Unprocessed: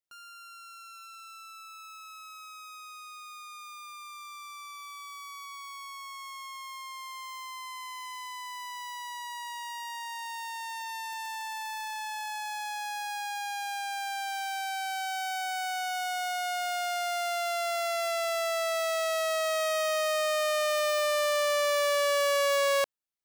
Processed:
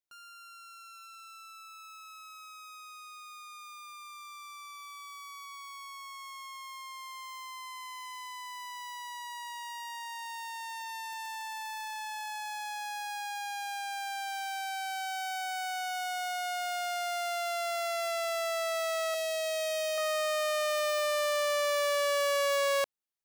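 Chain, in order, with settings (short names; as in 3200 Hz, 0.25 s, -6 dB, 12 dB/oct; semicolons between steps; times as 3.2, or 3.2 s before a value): 19.14–19.98 band shelf 1200 Hz -13 dB 1.2 oct; gain -2.5 dB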